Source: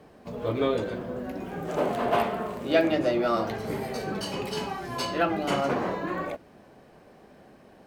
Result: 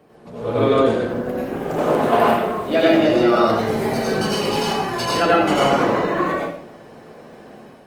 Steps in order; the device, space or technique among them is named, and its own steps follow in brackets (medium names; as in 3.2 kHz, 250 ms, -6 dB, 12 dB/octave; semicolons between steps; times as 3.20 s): far-field microphone of a smart speaker (reverberation RT60 0.65 s, pre-delay 80 ms, DRR -5 dB; high-pass 95 Hz 6 dB/octave; level rider gain up to 5.5 dB; Opus 24 kbps 48 kHz)